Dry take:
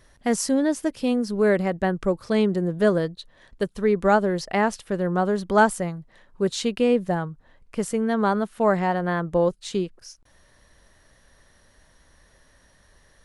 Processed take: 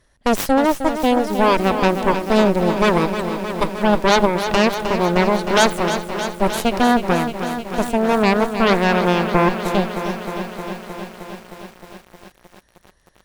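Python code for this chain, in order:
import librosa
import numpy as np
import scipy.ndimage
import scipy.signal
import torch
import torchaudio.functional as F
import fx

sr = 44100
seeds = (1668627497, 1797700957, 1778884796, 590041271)

y = fx.cheby_harmonics(x, sr, harmonics=(3, 8), levels_db=(-16, -9), full_scale_db=-5.0)
y = fx.echo_crushed(y, sr, ms=310, feedback_pct=80, bits=7, wet_db=-9)
y = y * 10.0 ** (1.5 / 20.0)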